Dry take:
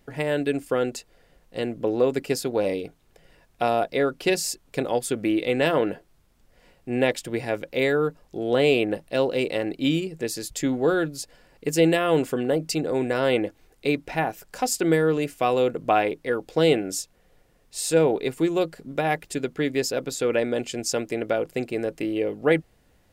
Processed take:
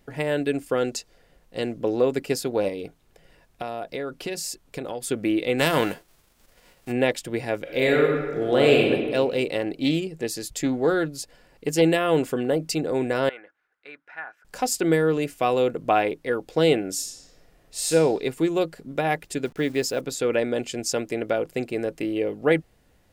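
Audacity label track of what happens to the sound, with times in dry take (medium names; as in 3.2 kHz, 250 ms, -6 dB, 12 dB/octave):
0.770000	2.000000	dynamic bell 5.6 kHz, up to +7 dB, over -53 dBFS, Q 1.3
2.680000	5.070000	compression, threshold -27 dBFS
5.580000	6.910000	formants flattened exponent 0.6
7.610000	8.880000	reverb throw, RT60 1.5 s, DRR -0.5 dB
9.600000	11.820000	loudspeaker Doppler distortion depth 0.1 ms
13.290000	14.450000	band-pass filter 1.5 kHz, Q 4.7
16.940000	17.870000	reverb throw, RT60 1.5 s, DRR -1.5 dB
19.450000	20.010000	send-on-delta sampling step -45.5 dBFS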